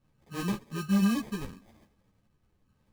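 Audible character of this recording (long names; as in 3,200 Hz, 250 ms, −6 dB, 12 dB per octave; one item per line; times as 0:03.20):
phaser sweep stages 8, 1.1 Hz, lowest notch 530–1,100 Hz
aliases and images of a low sample rate 1,400 Hz, jitter 0%
a shimmering, thickened sound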